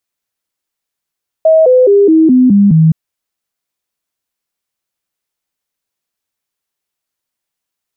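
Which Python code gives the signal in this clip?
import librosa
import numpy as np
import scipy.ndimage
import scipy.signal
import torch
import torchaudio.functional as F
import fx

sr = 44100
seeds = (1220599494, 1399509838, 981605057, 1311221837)

y = fx.stepped_sweep(sr, from_hz=639.0, direction='down', per_octave=3, tones=7, dwell_s=0.21, gap_s=0.0, level_db=-3.5)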